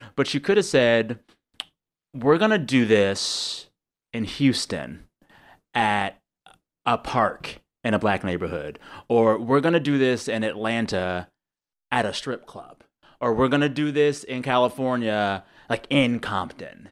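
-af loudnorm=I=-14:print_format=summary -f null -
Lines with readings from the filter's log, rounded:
Input Integrated:    -23.2 LUFS
Input True Peak:      -7.0 dBTP
Input LRA:             3.9 LU
Input Threshold:     -34.1 LUFS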